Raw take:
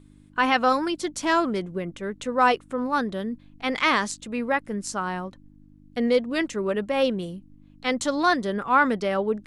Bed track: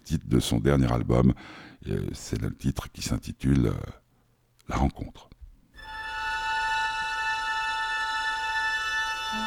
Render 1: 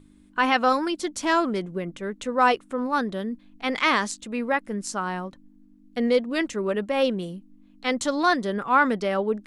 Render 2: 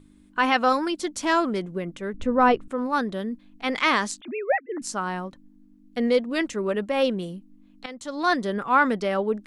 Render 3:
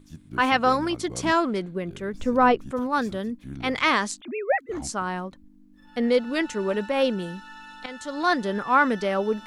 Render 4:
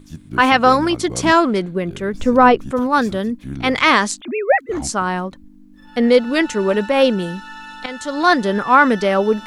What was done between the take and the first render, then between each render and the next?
de-hum 50 Hz, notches 3
2.14–2.68 RIAA curve playback; 4.21–4.82 sine-wave speech; 7.86–8.33 fade in quadratic, from -15 dB
add bed track -15.5 dB
gain +8.5 dB; limiter -1 dBFS, peak gain reduction 2 dB

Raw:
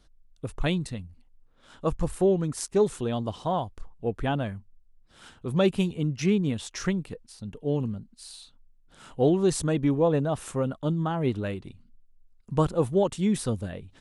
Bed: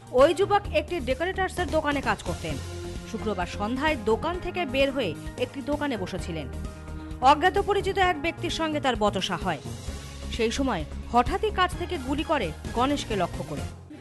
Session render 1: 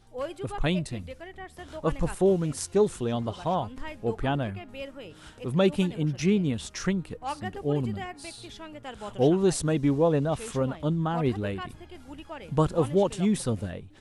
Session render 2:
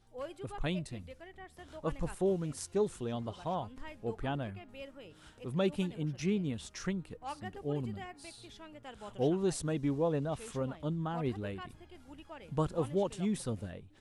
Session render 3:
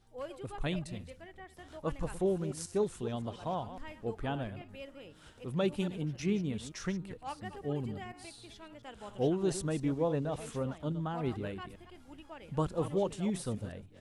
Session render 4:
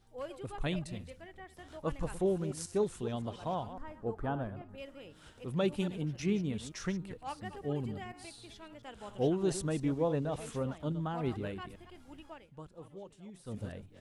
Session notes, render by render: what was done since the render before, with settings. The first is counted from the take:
add bed -15.5 dB
gain -8.5 dB
reverse delay 0.14 s, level -12 dB
3.73–4.78 resonant high shelf 1800 Hz -9 dB, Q 1.5; 12.31–13.62 dip -17 dB, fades 0.19 s

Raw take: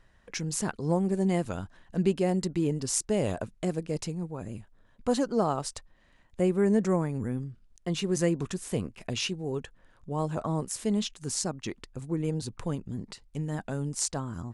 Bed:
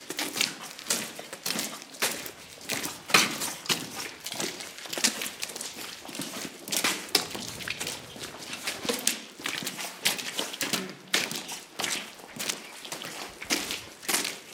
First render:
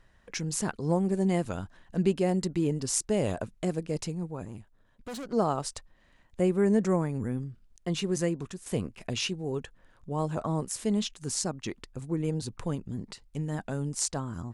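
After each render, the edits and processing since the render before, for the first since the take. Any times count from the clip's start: 4.45–5.33 tube stage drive 36 dB, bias 0.6; 7.99–8.66 fade out, to -9 dB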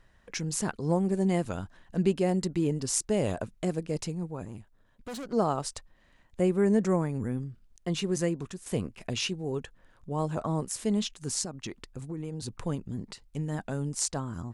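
11.43–12.48 compressor, threshold -32 dBFS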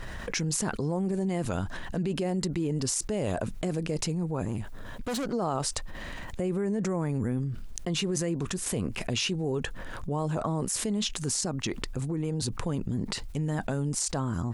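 limiter -23 dBFS, peak gain reduction 11.5 dB; fast leveller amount 70%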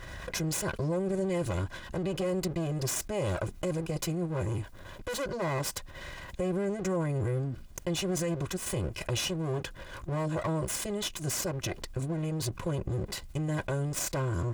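minimum comb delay 2 ms; notch comb 450 Hz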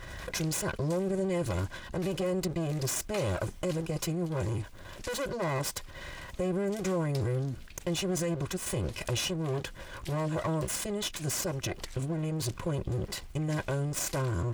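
add bed -22 dB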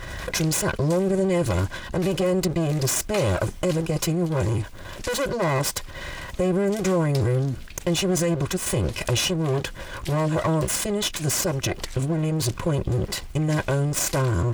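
gain +8.5 dB

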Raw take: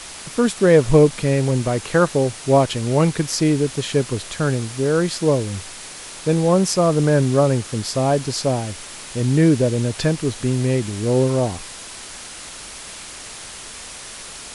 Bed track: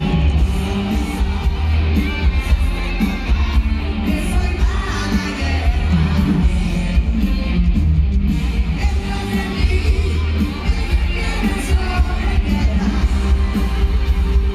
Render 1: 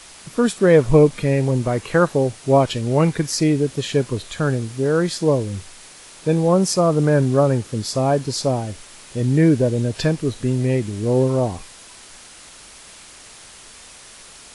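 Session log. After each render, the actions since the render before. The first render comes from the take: noise print and reduce 7 dB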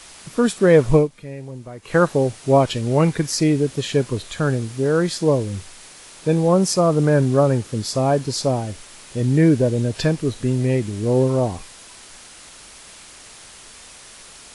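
0.94–1.96 dip -15 dB, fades 0.14 s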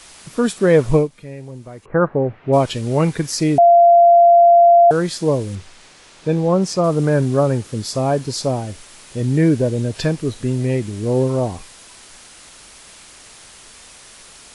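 1.84–2.52 LPF 1300 Hz -> 2600 Hz 24 dB/oct; 3.58–4.91 bleep 689 Hz -6 dBFS; 5.55–6.84 air absorption 68 m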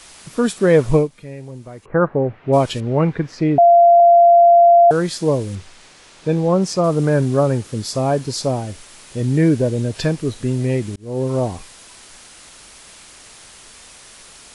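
2.8–4 LPF 2200 Hz; 10.96–11.37 fade in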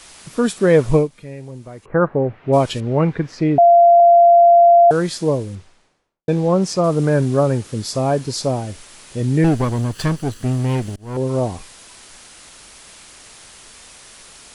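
5.08–6.28 studio fade out; 9.44–11.17 minimum comb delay 0.66 ms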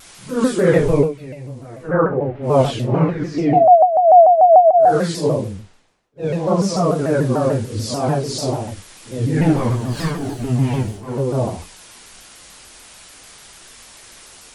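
phase scrambler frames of 0.2 s; shaped vibrato saw down 6.8 Hz, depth 160 cents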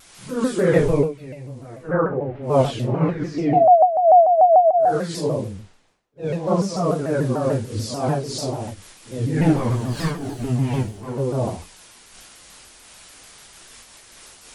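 noise-modulated level, depth 60%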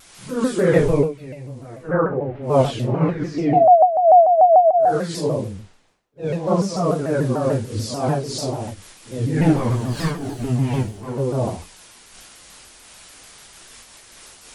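gain +1 dB

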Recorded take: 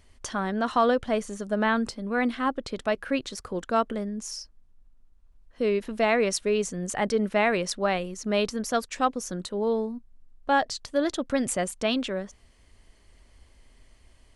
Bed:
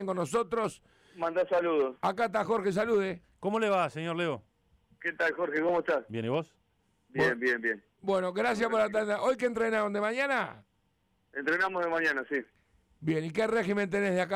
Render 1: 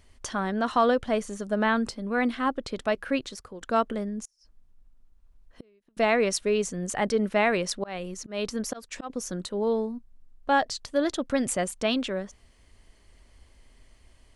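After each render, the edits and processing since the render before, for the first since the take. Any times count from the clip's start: 3.17–3.61 fade out, to -14 dB; 4.21–5.97 flipped gate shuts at -27 dBFS, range -37 dB; 7.45–9.1 auto swell 0.254 s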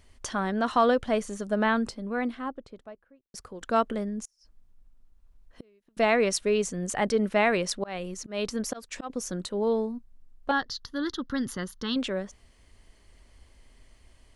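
1.5–3.34 studio fade out; 10.51–11.96 fixed phaser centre 2400 Hz, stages 6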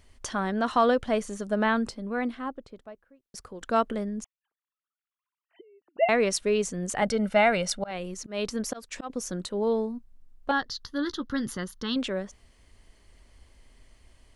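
4.24–6.09 sine-wave speech; 7.02–7.91 comb 1.4 ms, depth 59%; 10.79–11.58 doubler 14 ms -10.5 dB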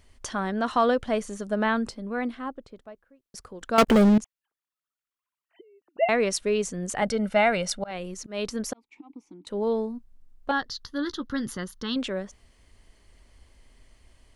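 3.78–4.18 sample leveller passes 5; 8.73–9.47 vowel filter u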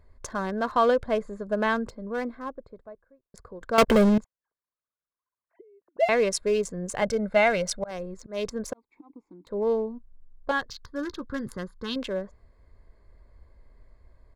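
Wiener smoothing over 15 samples; comb 1.9 ms, depth 36%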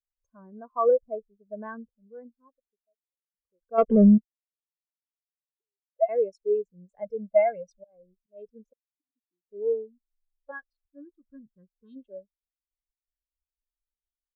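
spectral expander 2.5:1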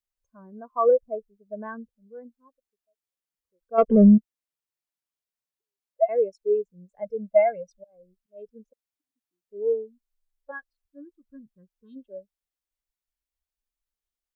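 gain +2 dB

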